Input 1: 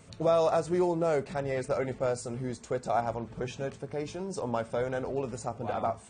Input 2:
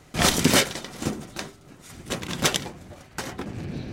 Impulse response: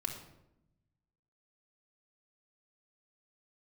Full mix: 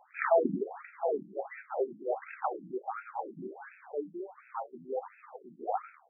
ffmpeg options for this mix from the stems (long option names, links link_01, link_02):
-filter_complex "[0:a]acrusher=bits=8:dc=4:mix=0:aa=0.000001,flanger=delay=9.7:depth=4.5:regen=-38:speed=0.76:shape=triangular,volume=1dB[link_01];[1:a]volume=-5.5dB[link_02];[link_01][link_02]amix=inputs=2:normalize=0,equalizer=frequency=250:width_type=o:width=0.33:gain=-7,equalizer=frequency=400:width_type=o:width=0.33:gain=7,equalizer=frequency=800:width_type=o:width=0.33:gain=11,afftfilt=real='re*between(b*sr/1024,230*pow(1900/230,0.5+0.5*sin(2*PI*1.4*pts/sr))/1.41,230*pow(1900/230,0.5+0.5*sin(2*PI*1.4*pts/sr))*1.41)':imag='im*between(b*sr/1024,230*pow(1900/230,0.5+0.5*sin(2*PI*1.4*pts/sr))/1.41,230*pow(1900/230,0.5+0.5*sin(2*PI*1.4*pts/sr))*1.41)':win_size=1024:overlap=0.75"